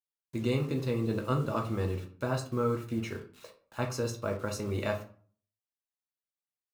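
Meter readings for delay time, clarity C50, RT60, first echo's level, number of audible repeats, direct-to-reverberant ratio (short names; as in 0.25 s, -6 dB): none, 10.5 dB, 0.45 s, none, none, 2.0 dB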